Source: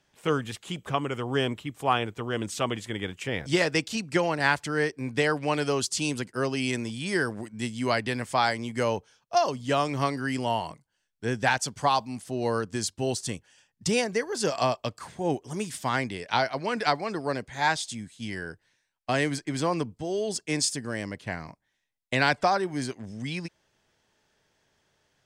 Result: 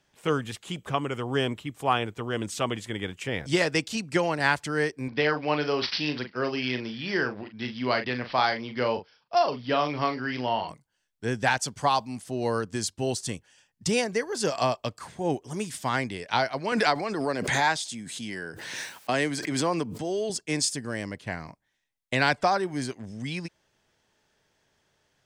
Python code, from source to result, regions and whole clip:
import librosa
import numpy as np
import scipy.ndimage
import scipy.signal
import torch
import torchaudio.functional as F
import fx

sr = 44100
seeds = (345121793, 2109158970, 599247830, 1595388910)

y = fx.chain(x, sr, fx.low_shelf(hz=150.0, db=-8.0),
    fx.doubler(ms=40.0, db=-8),
    fx.resample_bad(factor=4, down='none', up='filtered'), at=(5.08, 10.69))
y = fx.chain(y, sr, fx.highpass(hz=160.0, slope=12),
    fx.pre_swell(db_per_s=32.0), at=(16.72, 20.3))